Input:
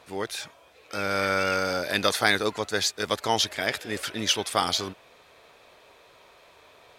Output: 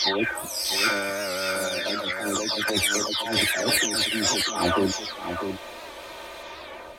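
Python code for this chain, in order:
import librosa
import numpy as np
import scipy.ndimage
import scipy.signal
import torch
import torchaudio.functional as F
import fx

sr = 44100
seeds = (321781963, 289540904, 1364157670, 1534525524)

p1 = fx.spec_delay(x, sr, highs='early', ms=558)
p2 = p1 + 0.58 * np.pad(p1, (int(3.3 * sr / 1000.0), 0))[:len(p1)]
p3 = fx.over_compress(p2, sr, threshold_db=-35.0, ratio=-1.0)
p4 = p3 + fx.echo_single(p3, sr, ms=648, db=-7.5, dry=0)
p5 = fx.record_warp(p4, sr, rpm=78.0, depth_cents=100.0)
y = p5 * 10.0 ** (8.5 / 20.0)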